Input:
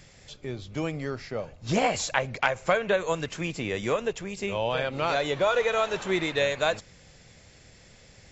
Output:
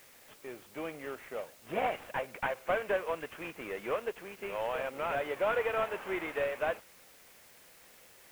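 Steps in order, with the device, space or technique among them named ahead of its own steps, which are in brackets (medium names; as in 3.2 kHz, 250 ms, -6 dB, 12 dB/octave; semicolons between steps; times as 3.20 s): army field radio (band-pass 390–2900 Hz; CVSD coder 16 kbps; white noise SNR 23 dB); trim -4.5 dB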